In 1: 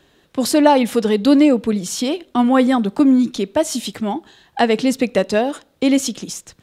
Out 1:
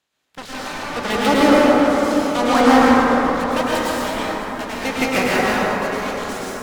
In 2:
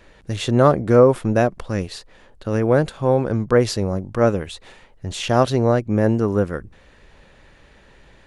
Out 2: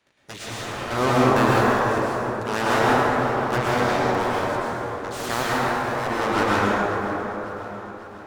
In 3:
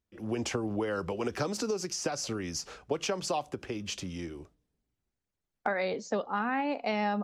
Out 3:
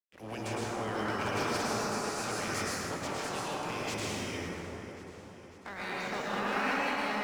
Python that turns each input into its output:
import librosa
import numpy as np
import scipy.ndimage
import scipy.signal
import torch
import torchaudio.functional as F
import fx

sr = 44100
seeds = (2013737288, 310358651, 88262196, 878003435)

p1 = fx.spec_clip(x, sr, under_db=20)
p2 = fx.env_lowpass_down(p1, sr, base_hz=1600.0, full_db=-11.0)
p3 = scipy.signal.sosfilt(scipy.signal.butter(2, 57.0, 'highpass', fs=sr, output='sos'), p2)
p4 = fx.leveller(p3, sr, passes=3)
p5 = p4 * (1.0 - 0.53 / 2.0 + 0.53 / 2.0 * np.cos(2.0 * np.pi * 0.78 * (np.arange(len(p4)) / sr)))
p6 = fx.cheby_harmonics(p5, sr, harmonics=(3, 7), levels_db=(-14, -16), full_scale_db=1.0)
p7 = fx.hum_notches(p6, sr, base_hz=50, count=2)
p8 = p7 + fx.echo_feedback(p7, sr, ms=545, feedback_pct=58, wet_db=-16.5, dry=0)
p9 = fx.rev_plate(p8, sr, seeds[0], rt60_s=4.2, hf_ratio=0.3, predelay_ms=95, drr_db=-8.0)
y = F.gain(torch.from_numpy(p9), -12.0).numpy()